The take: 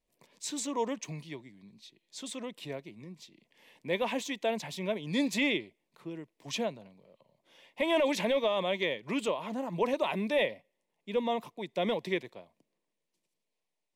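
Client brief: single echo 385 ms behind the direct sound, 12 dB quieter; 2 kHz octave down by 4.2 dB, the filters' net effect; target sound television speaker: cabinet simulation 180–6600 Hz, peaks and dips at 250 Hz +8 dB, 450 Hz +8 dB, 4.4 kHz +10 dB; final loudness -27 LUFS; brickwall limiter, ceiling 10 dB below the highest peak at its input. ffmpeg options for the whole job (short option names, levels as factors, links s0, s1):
-af "equalizer=f=2000:t=o:g=-5.5,alimiter=level_in=1.58:limit=0.0631:level=0:latency=1,volume=0.631,highpass=f=180:w=0.5412,highpass=f=180:w=1.3066,equalizer=f=250:t=q:w=4:g=8,equalizer=f=450:t=q:w=4:g=8,equalizer=f=4400:t=q:w=4:g=10,lowpass=f=6600:w=0.5412,lowpass=f=6600:w=1.3066,aecho=1:1:385:0.251,volume=2.37"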